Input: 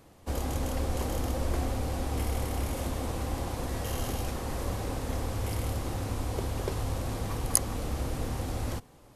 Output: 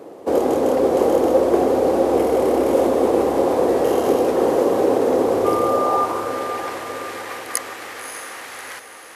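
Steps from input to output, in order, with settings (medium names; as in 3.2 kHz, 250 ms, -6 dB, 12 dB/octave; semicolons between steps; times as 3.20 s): tilt shelf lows +8 dB, about 1.2 kHz; in parallel at +1 dB: peak limiter -20.5 dBFS, peak gain reduction 11.5 dB; 5.44–6.04 s: on the sum: whistle 1.2 kHz -28 dBFS; high-pass sweep 410 Hz -> 1.8 kHz, 5.63–6.42 s; echo that smears into a reverb 596 ms, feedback 53%, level -8 dB; trim +5.5 dB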